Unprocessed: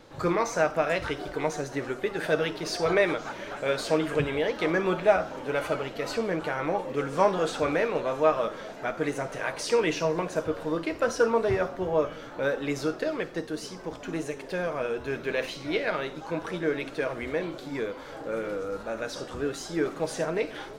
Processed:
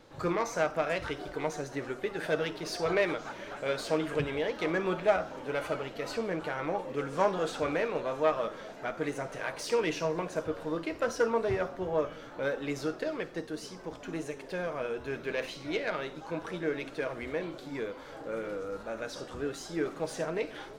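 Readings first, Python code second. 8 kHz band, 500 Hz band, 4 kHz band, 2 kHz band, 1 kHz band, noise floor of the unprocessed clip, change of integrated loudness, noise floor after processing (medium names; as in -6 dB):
-5.0 dB, -4.5 dB, -4.5 dB, -4.5 dB, -4.5 dB, -42 dBFS, -4.5 dB, -47 dBFS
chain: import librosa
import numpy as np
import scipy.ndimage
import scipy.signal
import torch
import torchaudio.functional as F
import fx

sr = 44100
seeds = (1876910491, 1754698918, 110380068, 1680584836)

y = fx.self_delay(x, sr, depth_ms=0.071)
y = y * librosa.db_to_amplitude(-4.5)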